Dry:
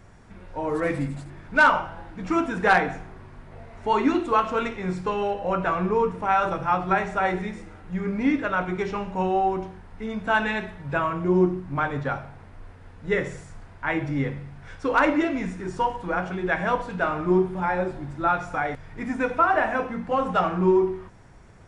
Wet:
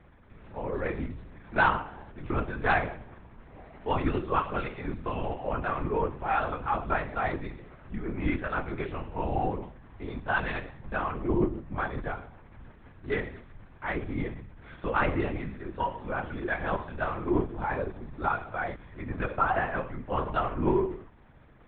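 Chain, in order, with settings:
linear-prediction vocoder at 8 kHz whisper
level −6 dB

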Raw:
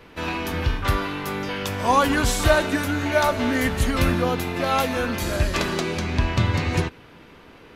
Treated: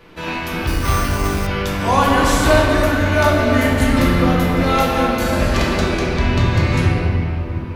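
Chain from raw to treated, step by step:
rectangular room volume 210 cubic metres, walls hard, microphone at 0.78 metres
0:00.67–0:01.47: bad sample-rate conversion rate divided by 6×, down none, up hold

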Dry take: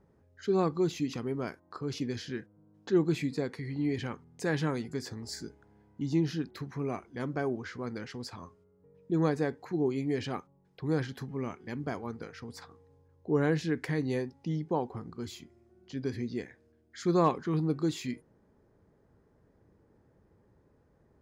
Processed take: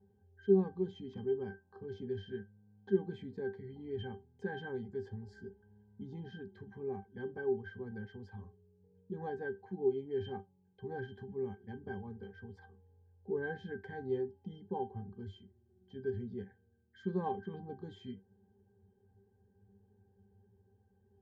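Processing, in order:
resonances in every octave G, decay 0.17 s
level +6 dB

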